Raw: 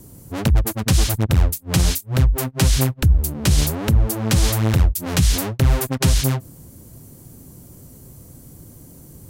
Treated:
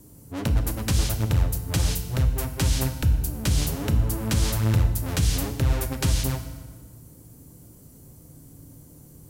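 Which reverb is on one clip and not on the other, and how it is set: FDN reverb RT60 1.5 s, low-frequency decay 1.25×, high-frequency decay 0.75×, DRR 6 dB; trim -7 dB

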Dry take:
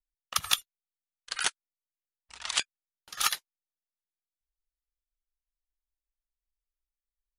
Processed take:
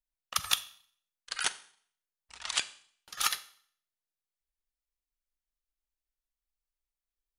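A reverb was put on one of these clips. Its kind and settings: Schroeder reverb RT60 0.55 s, combs from 30 ms, DRR 14.5 dB; trim -2 dB

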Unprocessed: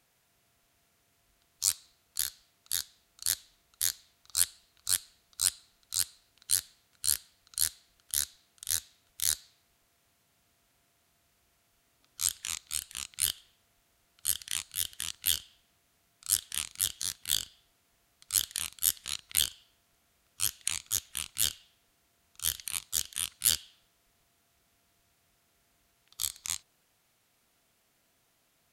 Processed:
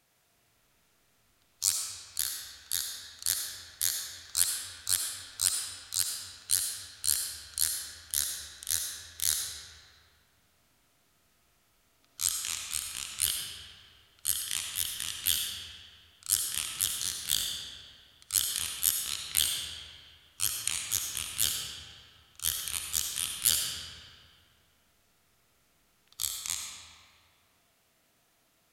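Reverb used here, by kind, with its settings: algorithmic reverb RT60 2.2 s, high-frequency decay 0.7×, pre-delay 30 ms, DRR 1 dB

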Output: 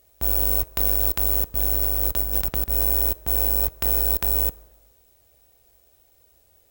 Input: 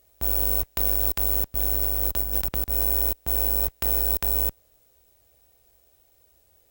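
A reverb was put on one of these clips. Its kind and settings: plate-style reverb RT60 1.3 s, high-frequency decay 0.5×, DRR 19.5 dB; trim +2 dB

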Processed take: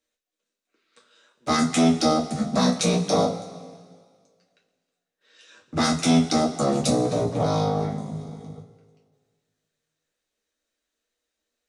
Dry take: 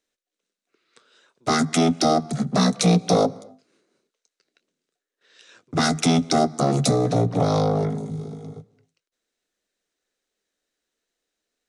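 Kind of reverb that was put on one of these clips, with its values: two-slope reverb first 0.23 s, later 1.8 s, from -18 dB, DRR -2.5 dB; trim -5 dB

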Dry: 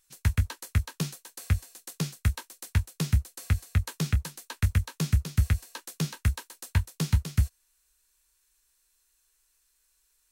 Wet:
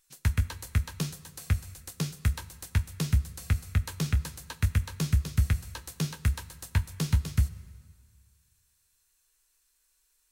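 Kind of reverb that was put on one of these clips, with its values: plate-style reverb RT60 1.9 s, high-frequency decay 0.9×, DRR 15 dB; trim -1 dB

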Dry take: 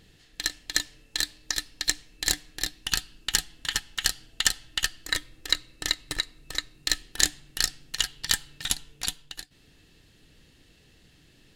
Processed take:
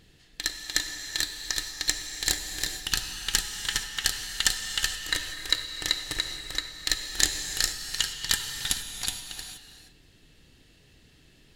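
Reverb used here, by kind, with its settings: gated-style reverb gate 500 ms flat, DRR 4.5 dB; trim -1 dB

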